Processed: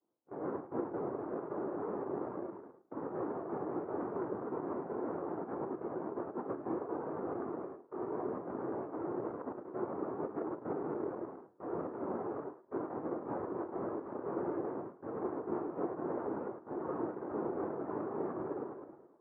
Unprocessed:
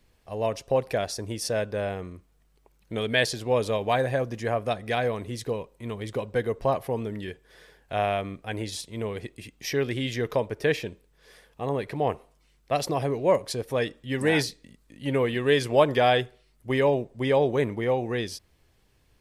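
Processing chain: rattling part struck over -43 dBFS, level -12 dBFS; low shelf 200 Hz -4.5 dB; thinning echo 0.106 s, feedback 68%, high-pass 820 Hz, level -5 dB; on a send at -18 dB: reverb RT60 0.25 s, pre-delay 88 ms; on the sum: noise vocoder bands 1; LPF 1200 Hz 24 dB/oct; reverse; compressor 8:1, threshold -44 dBFS, peak gain reduction 22 dB; reverse; bell 360 Hz +10 dB 1 oct; spectral expander 1.5:1; gain +4.5 dB

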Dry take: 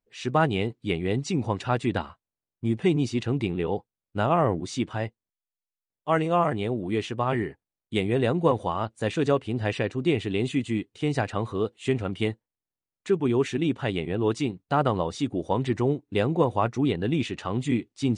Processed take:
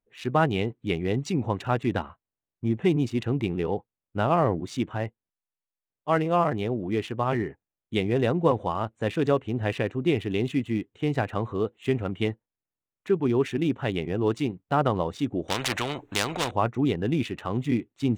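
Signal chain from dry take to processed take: Wiener smoothing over 9 samples; 15.48–16.51 spectral compressor 4:1

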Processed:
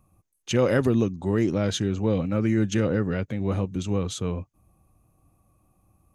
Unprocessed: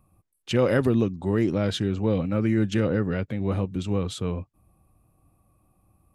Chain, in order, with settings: bell 6400 Hz +11 dB 0.24 oct

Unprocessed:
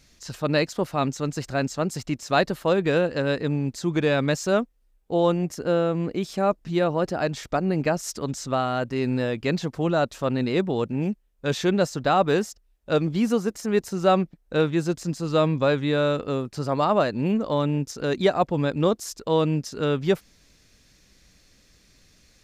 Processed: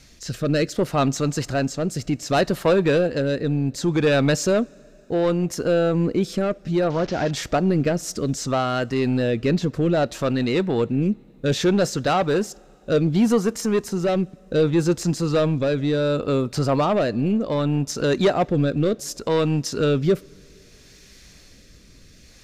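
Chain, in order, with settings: 6.9–7.31 delta modulation 32 kbps, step -38 dBFS; in parallel at -1 dB: compressor, threshold -31 dBFS, peak gain reduction 16 dB; on the sum: soft clip -16 dBFS, distortion -13 dB; rotary speaker horn 0.65 Hz; two-slope reverb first 0.25 s, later 3.3 s, from -18 dB, DRR 19 dB; gain +5 dB

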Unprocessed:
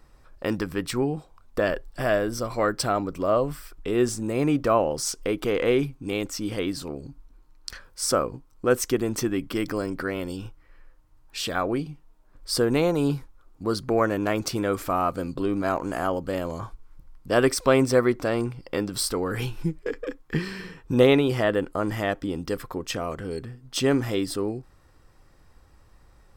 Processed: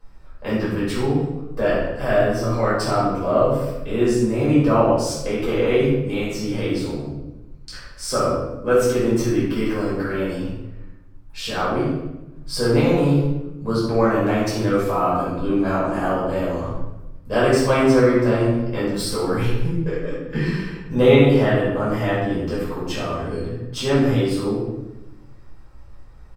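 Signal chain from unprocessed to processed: high shelf 5600 Hz -5.5 dB; doubler 14 ms -13.5 dB; shoebox room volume 410 m³, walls mixed, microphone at 5.3 m; gain -8 dB

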